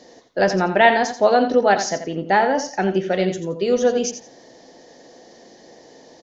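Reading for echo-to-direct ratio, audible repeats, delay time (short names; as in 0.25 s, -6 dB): -10.0 dB, 2, 86 ms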